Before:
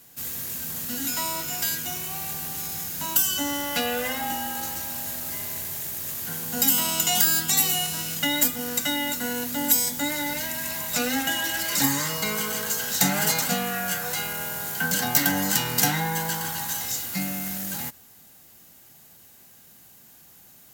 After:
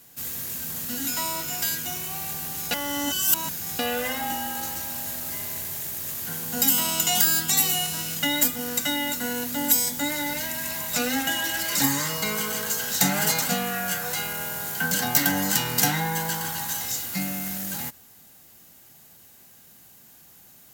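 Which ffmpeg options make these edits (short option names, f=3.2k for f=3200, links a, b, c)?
-filter_complex "[0:a]asplit=3[a][b][c];[a]atrim=end=2.712[d];[b]atrim=start=2.708:end=3.792,asetpts=PTS-STARTPTS,areverse[e];[c]atrim=start=3.788[f];[d][e]acrossfade=d=0.004:c1=hsin:c2=hsin[g];[g][f]acrossfade=d=0.004:c1=hsin:c2=hsin"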